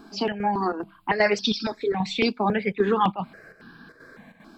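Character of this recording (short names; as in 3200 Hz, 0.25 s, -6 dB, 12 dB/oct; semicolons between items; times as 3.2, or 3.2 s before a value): chopped level 2.5 Hz, depth 60%, duty 80%; notches that jump at a steady rate 3.6 Hz 510–2100 Hz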